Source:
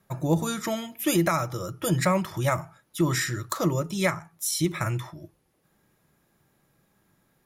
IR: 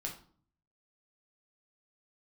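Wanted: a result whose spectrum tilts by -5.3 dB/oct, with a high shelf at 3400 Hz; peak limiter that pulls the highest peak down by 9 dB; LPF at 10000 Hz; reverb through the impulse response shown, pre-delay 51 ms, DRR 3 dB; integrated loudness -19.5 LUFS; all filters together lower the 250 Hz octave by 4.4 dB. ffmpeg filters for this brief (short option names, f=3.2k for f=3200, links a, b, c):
-filter_complex "[0:a]lowpass=10k,equalizer=f=250:t=o:g=-7.5,highshelf=f=3.4k:g=-7.5,alimiter=limit=-22.5dB:level=0:latency=1,asplit=2[a][b];[1:a]atrim=start_sample=2205,adelay=51[c];[b][c]afir=irnorm=-1:irlink=0,volume=-3dB[d];[a][d]amix=inputs=2:normalize=0,volume=12dB"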